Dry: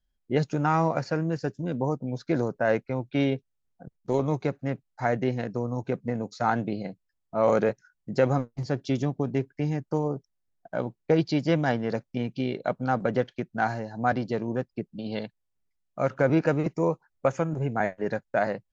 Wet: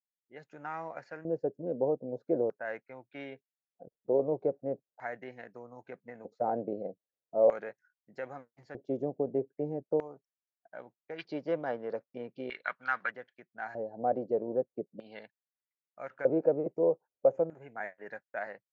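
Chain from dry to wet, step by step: band shelf 2500 Hz -10 dB 2.9 oct, from 11.18 s +9 dB, from 13.1 s -9 dB; AGC gain up to 12.5 dB; LFO band-pass square 0.4 Hz 520–1800 Hz; gain -8.5 dB

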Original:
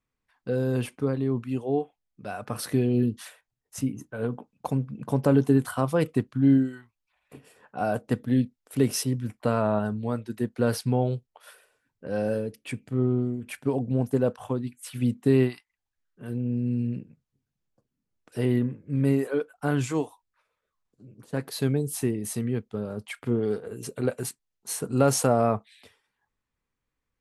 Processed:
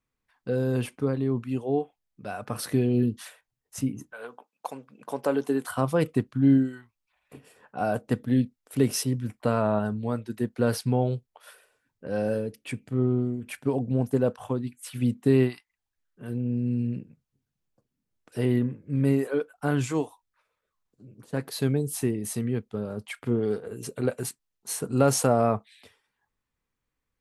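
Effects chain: 4.11–5.68 HPF 900 Hz -> 330 Hz 12 dB/oct

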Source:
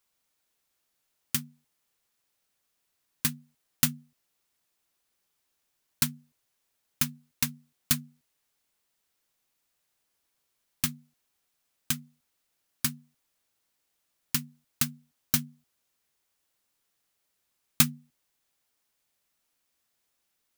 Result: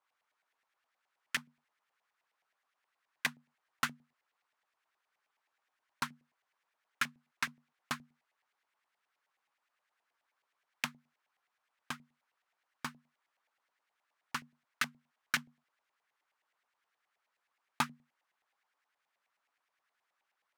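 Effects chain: LFO band-pass saw up 9.5 Hz 740–2100 Hz; gain +8 dB

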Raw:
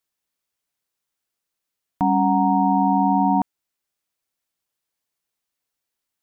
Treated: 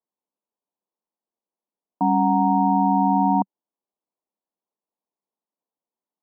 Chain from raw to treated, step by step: elliptic band-pass 190–1000 Hz

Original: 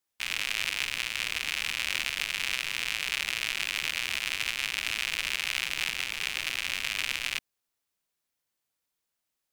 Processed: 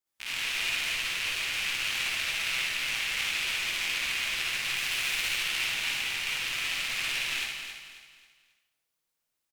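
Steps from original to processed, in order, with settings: 4.7–5.31 high shelf 8300 Hz +5.5 dB; feedback echo 0.27 s, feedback 36%, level -8.5 dB; reverb RT60 0.80 s, pre-delay 47 ms, DRR -7 dB; gain -7.5 dB

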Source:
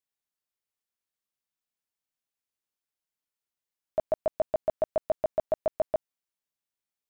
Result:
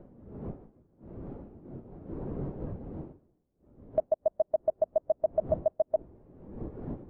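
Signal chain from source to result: wind noise 390 Hz -44 dBFS; compressor 2:1, threshold -46 dBFS, peak gain reduction 13.5 dB; spectral expander 1.5:1; gain +9 dB

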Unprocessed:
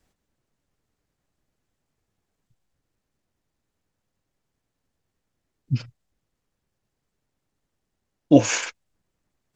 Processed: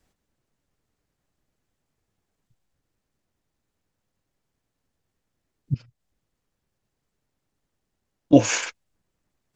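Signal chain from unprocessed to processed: 5.74–8.33 compressor 5:1, threshold -37 dBFS, peak gain reduction 17.5 dB

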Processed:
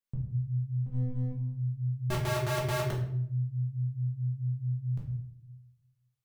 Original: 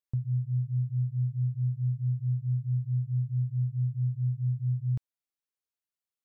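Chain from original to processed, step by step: 0.86–1.31 minimum comb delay 1.1 ms; 2.1–2.91 wrapped overs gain 26.5 dB; shoebox room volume 130 m³, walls mixed, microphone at 1.3 m; gain -4 dB

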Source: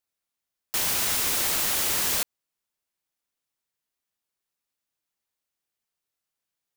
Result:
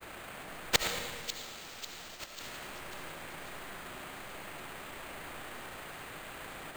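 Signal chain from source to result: per-bin compression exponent 0.4; low-pass opened by the level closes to 1800 Hz, open at -22.5 dBFS; grains 73 ms, grains 29/s; flange 1.4 Hz, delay 1.5 ms, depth 7.2 ms, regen +55%; flipped gate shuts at -20 dBFS, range -30 dB; split-band echo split 2800 Hz, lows 0.114 s, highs 0.544 s, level -9.5 dB; digital reverb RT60 1.9 s, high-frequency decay 0.7×, pre-delay 35 ms, DRR 3.5 dB; careless resampling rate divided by 4×, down filtered, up hold; gain +13.5 dB

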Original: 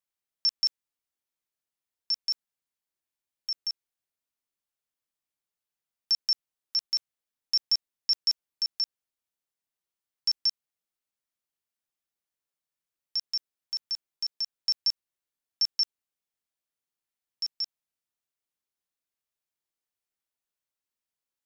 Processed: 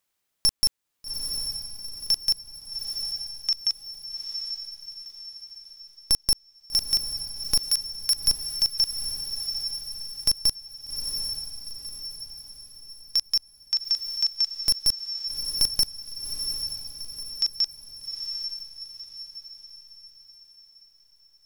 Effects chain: one-sided fold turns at -25 dBFS; 7.68–8.28 Chebyshev high-pass 1600 Hz, order 2; diffused feedback echo 0.802 s, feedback 43%, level -8.5 dB; in parallel at +2 dB: compressor, threshold -41 dBFS, peak gain reduction 17.5 dB; on the sum: gain +5 dB

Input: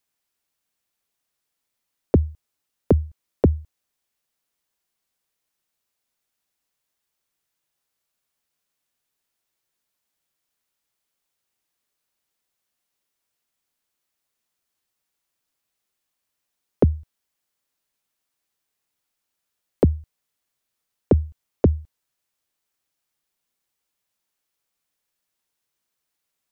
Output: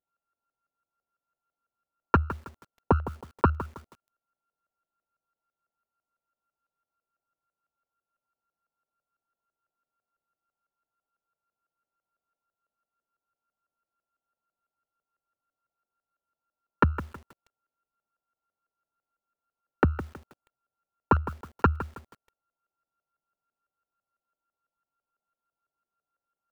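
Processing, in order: sample sorter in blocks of 32 samples; LFO low-pass saw up 6 Hz 570–1600 Hz; lo-fi delay 0.16 s, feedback 35%, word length 6-bit, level -13 dB; gain -6.5 dB

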